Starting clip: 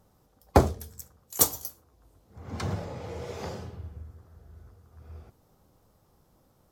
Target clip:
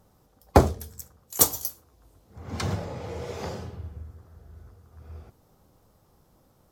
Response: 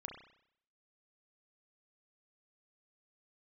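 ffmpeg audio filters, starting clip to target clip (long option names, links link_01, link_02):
-filter_complex "[0:a]asplit=3[link_01][link_02][link_03];[link_01]afade=type=out:start_time=1.53:duration=0.02[link_04];[link_02]adynamicequalizer=threshold=0.00224:dfrequency=1900:dqfactor=0.7:tfrequency=1900:tqfactor=0.7:attack=5:release=100:ratio=0.375:range=2:mode=boostabove:tftype=highshelf,afade=type=in:start_time=1.53:duration=0.02,afade=type=out:start_time=2.75:duration=0.02[link_05];[link_03]afade=type=in:start_time=2.75:duration=0.02[link_06];[link_04][link_05][link_06]amix=inputs=3:normalize=0,volume=2.5dB"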